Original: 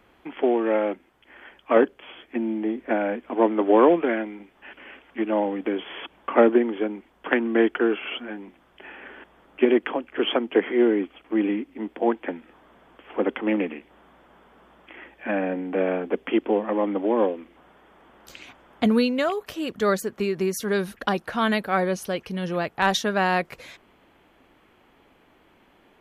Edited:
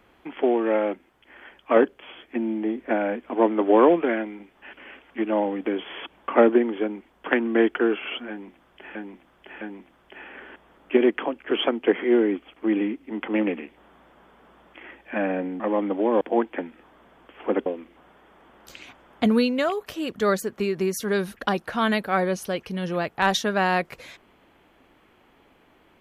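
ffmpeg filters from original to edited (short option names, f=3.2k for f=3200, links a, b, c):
-filter_complex "[0:a]asplit=7[a][b][c][d][e][f][g];[a]atrim=end=8.952[h];[b]atrim=start=8.288:end=8.952[i];[c]atrim=start=8.288:end=11.912[j];[d]atrim=start=13.358:end=15.732[k];[e]atrim=start=16.648:end=17.262[l];[f]atrim=start=11.908:end=13.362[m];[g]atrim=start=17.258[n];[h][i]acrossfade=d=0.004:c1=hsin:c2=hsin[o];[o][j]acrossfade=d=0.004:c1=hsin:c2=hsin[p];[p][k]acrossfade=d=0.004:c1=hsin:c2=hsin[q];[q][l]acrossfade=d=0.004:c1=hsin:c2=hsin[r];[r][m]acrossfade=d=0.004:c1=hsin:c2=hsin[s];[s][n]acrossfade=d=0.004:c1=hsin:c2=hsin"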